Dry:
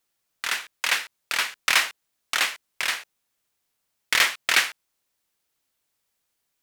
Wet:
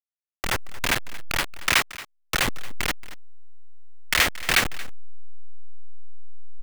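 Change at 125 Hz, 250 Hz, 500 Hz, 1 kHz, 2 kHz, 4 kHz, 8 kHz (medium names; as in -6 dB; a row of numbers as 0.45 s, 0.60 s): no reading, +13.0 dB, +6.5 dB, +1.0 dB, -1.0 dB, -1.5 dB, -0.5 dB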